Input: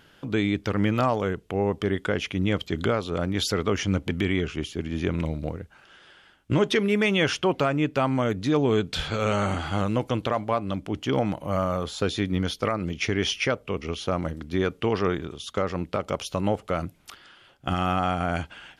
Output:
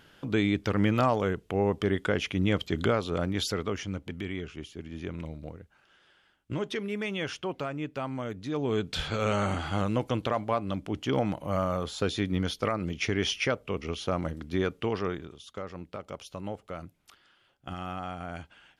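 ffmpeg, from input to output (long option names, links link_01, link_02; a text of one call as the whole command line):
ffmpeg -i in.wav -af "volume=6dB,afade=type=out:start_time=3.08:duration=0.84:silence=0.354813,afade=type=in:start_time=8.49:duration=0.5:silence=0.421697,afade=type=out:start_time=14.56:duration=0.92:silence=0.354813" out.wav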